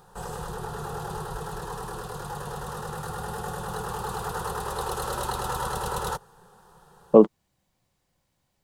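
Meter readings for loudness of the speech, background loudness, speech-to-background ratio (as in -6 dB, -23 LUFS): -19.5 LUFS, -33.0 LUFS, 13.5 dB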